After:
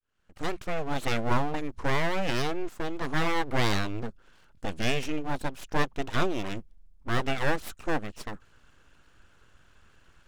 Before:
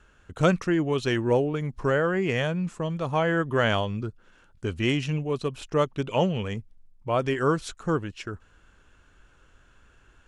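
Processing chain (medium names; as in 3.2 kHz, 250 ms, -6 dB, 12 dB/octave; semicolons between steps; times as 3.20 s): fade-in on the opening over 1.12 s; full-wave rectifier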